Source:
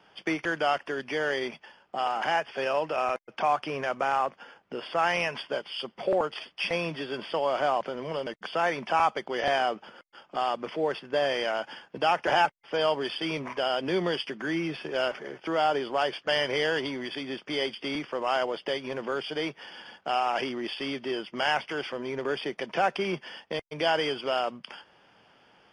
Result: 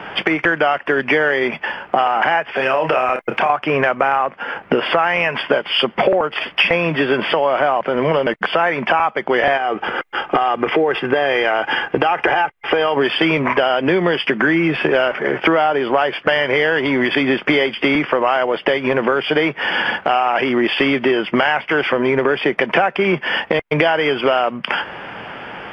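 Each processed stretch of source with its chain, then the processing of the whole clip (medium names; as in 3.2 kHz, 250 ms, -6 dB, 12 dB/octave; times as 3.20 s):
2.56–3.50 s: treble shelf 6.2 kHz +8.5 dB + compression 3:1, threshold -36 dBFS + doubling 31 ms -7.5 dB
9.57–12.97 s: comb 2.5 ms, depth 38% + compression 5:1, threshold -29 dBFS + band-stop 4.5 kHz
whole clip: resonant high shelf 3.4 kHz -14 dB, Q 1.5; compression 12:1, threshold -40 dBFS; loudness maximiser +28.5 dB; trim -1 dB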